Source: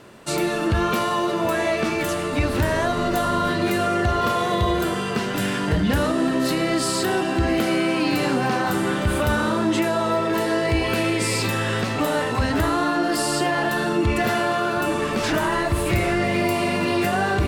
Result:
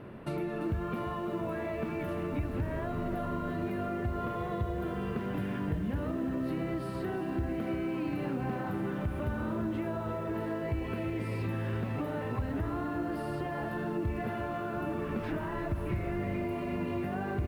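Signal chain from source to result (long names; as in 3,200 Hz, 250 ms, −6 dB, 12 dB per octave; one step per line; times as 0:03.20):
low-shelf EQ 310 Hz +5 dB
on a send: single-tap delay 1,004 ms −19.5 dB
on the sum: downward compressor 6 to 1, threshold −30 dBFS, peak gain reduction 16.5 dB
drawn EQ curve 150 Hz 0 dB, 2,400 Hz −7 dB, 7,300 Hz −29 dB, 11,000 Hz −15 dB
feedback echo at a low word length 344 ms, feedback 55%, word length 9 bits, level −11 dB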